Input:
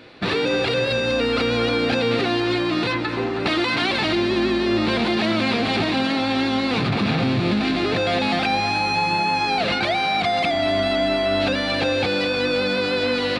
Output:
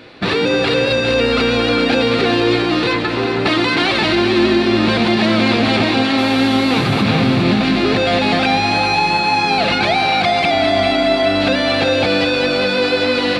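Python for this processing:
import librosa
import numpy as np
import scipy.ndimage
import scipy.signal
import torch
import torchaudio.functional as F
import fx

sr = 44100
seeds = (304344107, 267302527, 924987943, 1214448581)

y = fx.dmg_buzz(x, sr, base_hz=400.0, harmonics=31, level_db=-39.0, tilt_db=-5, odd_only=False, at=(6.17, 7.01), fade=0.02)
y = fx.echo_split(y, sr, split_hz=350.0, low_ms=190, high_ms=404, feedback_pct=52, wet_db=-7.5)
y = y * librosa.db_to_amplitude(5.0)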